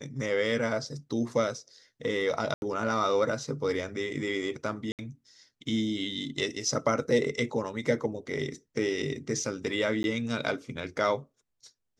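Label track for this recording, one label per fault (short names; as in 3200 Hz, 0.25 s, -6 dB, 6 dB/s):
2.540000	2.620000	gap 81 ms
4.920000	4.990000	gap 68 ms
10.030000	10.040000	gap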